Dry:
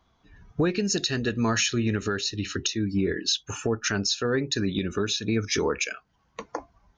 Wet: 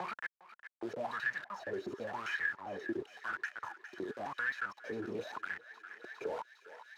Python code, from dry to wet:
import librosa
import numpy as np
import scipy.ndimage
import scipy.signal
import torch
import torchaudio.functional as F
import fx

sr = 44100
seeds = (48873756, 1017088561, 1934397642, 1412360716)

y = fx.block_reorder(x, sr, ms=133.0, group=6)
y = fx.high_shelf(y, sr, hz=4400.0, db=-3.0)
y = y + 0.62 * np.pad(y, (int(1.3 * sr / 1000.0), 0))[:len(y)]
y = fx.auto_swell(y, sr, attack_ms=456.0)
y = fx.quant_companded(y, sr, bits=2)
y = fx.wah_lfo(y, sr, hz=0.94, low_hz=350.0, high_hz=1800.0, q=11.0)
y = fx.echo_thinned(y, sr, ms=406, feedback_pct=76, hz=890.0, wet_db=-18)
y = fx.band_squash(y, sr, depth_pct=70)
y = y * librosa.db_to_amplitude(6.0)